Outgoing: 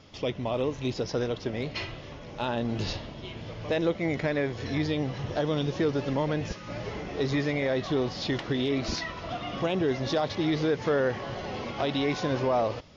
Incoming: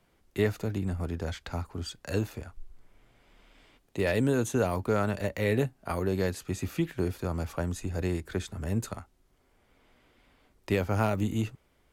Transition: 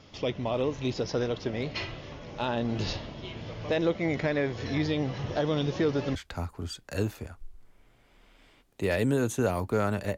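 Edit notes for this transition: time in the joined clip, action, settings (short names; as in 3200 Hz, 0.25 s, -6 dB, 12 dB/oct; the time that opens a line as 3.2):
outgoing
6.15 switch to incoming from 1.31 s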